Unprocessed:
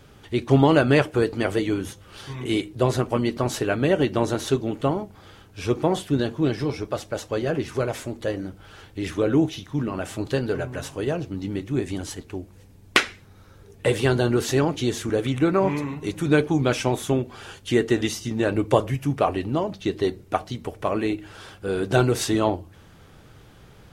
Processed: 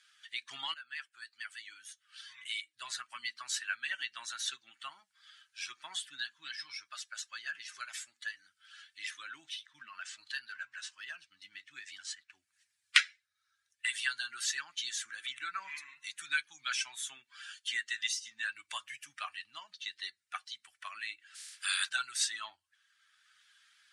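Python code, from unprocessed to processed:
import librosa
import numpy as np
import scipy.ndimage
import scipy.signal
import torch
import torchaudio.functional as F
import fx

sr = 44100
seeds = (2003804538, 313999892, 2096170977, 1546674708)

y = fx.resample_linear(x, sr, factor=3, at=(9.31, 12.33))
y = fx.spec_clip(y, sr, under_db=30, at=(21.34, 21.88), fade=0.02)
y = fx.edit(y, sr, fx.fade_in_from(start_s=0.74, length_s=2.43, floor_db=-15.5), tone=tone)
y = fx.bin_expand(y, sr, power=1.5)
y = scipy.signal.sosfilt(scipy.signal.ellip(3, 1.0, 50, [1600.0, 9300.0], 'bandpass', fs=sr, output='sos'), y)
y = fx.band_squash(y, sr, depth_pct=40)
y = y * librosa.db_to_amplitude(3.5)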